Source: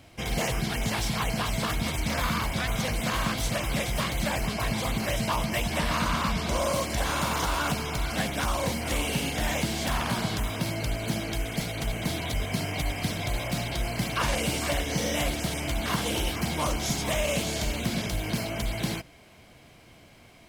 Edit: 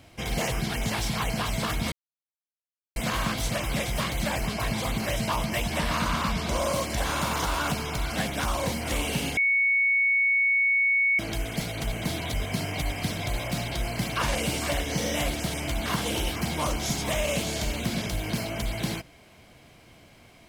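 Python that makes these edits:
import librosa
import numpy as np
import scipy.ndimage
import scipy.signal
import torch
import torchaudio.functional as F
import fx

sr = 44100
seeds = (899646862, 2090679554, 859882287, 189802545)

y = fx.edit(x, sr, fx.silence(start_s=1.92, length_s=1.04),
    fx.bleep(start_s=9.37, length_s=1.82, hz=2220.0, db=-19.5), tone=tone)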